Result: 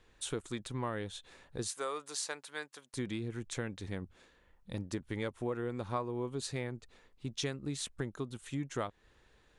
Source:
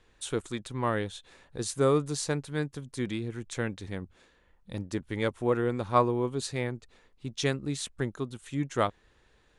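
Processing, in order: 1.70–2.94 s: high-pass 780 Hz 12 dB/octave; compression 4:1, threshold -32 dBFS, peak gain reduction 13 dB; trim -1.5 dB

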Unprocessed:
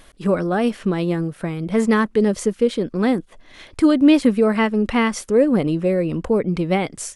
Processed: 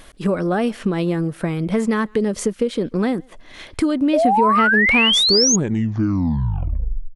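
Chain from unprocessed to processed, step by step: tape stop on the ending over 1.93 s; compression 6:1, threshold -20 dBFS, peak gain reduction 11 dB; speakerphone echo 140 ms, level -27 dB; painted sound rise, 4.13–5.56 s, 570–6800 Hz -20 dBFS; trim +4 dB

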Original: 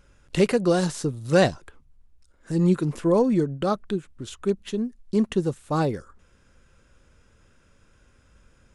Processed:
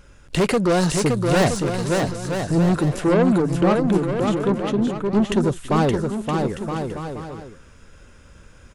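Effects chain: 3.07–5.26 s: treble shelf 3.6 kHz -12 dB; saturation -23 dBFS, distortion -8 dB; bouncing-ball echo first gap 570 ms, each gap 0.7×, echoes 5; trim +8.5 dB

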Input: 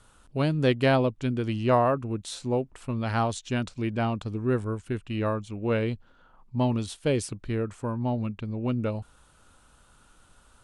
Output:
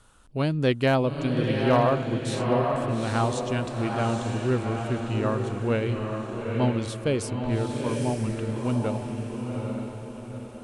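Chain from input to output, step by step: echo that smears into a reverb 854 ms, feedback 44%, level -3 dB; overload inside the chain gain 12 dB

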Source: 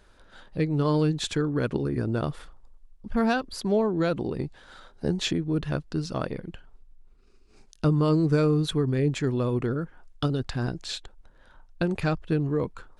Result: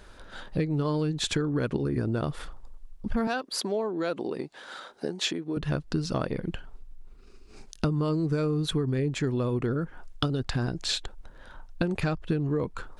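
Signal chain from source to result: compression 6:1, threshold -32 dBFS, peak gain reduction 14 dB; 3.27–5.57 s: high-pass 310 Hz 12 dB/octave; trim +7.5 dB

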